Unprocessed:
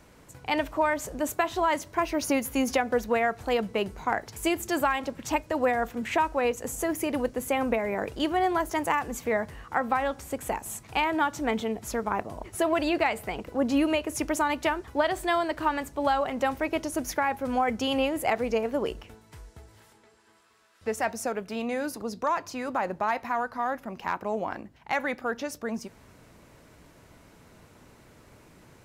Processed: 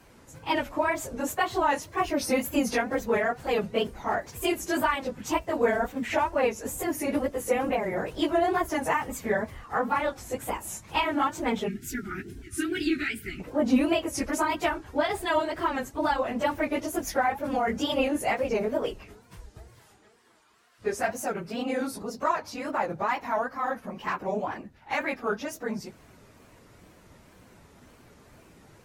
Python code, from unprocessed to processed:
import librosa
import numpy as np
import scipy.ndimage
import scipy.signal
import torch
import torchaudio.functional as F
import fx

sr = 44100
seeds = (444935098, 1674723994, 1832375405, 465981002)

y = fx.phase_scramble(x, sr, seeds[0], window_ms=50)
y = fx.spec_box(y, sr, start_s=11.69, length_s=1.71, low_hz=430.0, high_hz=1300.0, gain_db=-30)
y = fx.wow_flutter(y, sr, seeds[1], rate_hz=2.1, depth_cents=150.0)